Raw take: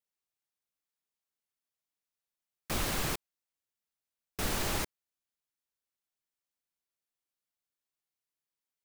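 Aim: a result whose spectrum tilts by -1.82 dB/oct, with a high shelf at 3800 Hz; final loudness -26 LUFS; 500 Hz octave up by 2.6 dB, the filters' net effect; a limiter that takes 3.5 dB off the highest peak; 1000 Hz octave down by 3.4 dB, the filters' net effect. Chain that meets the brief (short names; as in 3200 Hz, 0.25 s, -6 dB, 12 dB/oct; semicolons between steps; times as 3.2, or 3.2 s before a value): bell 500 Hz +5 dB; bell 1000 Hz -7 dB; high shelf 3800 Hz +8.5 dB; gain +4.5 dB; limiter -15.5 dBFS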